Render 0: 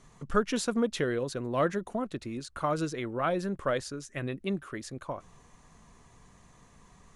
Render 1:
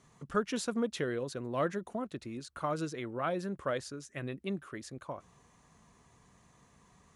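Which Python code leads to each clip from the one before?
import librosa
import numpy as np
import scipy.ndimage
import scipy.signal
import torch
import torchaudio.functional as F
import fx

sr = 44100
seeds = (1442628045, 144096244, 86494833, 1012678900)

y = scipy.signal.sosfilt(scipy.signal.butter(2, 62.0, 'highpass', fs=sr, output='sos'), x)
y = y * 10.0 ** (-4.5 / 20.0)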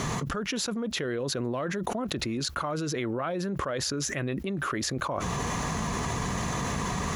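y = fx.peak_eq(x, sr, hz=8600.0, db=-13.5, octaves=0.2)
y = fx.env_flatten(y, sr, amount_pct=100)
y = y * 10.0 ** (-5.0 / 20.0)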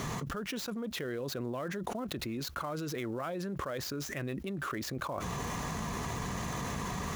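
y = fx.dead_time(x, sr, dead_ms=0.051)
y = y * 10.0 ** (-6.0 / 20.0)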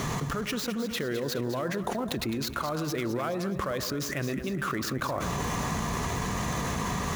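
y = fx.echo_split(x, sr, split_hz=1100.0, low_ms=114, high_ms=210, feedback_pct=52, wet_db=-10)
y = y * 10.0 ** (5.5 / 20.0)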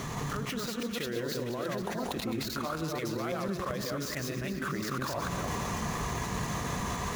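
y = fx.reverse_delay(x, sr, ms=166, wet_db=0.0)
y = fx.echo_wet_highpass(y, sr, ms=687, feedback_pct=61, hz=1700.0, wet_db=-13)
y = y * 10.0 ** (-6.0 / 20.0)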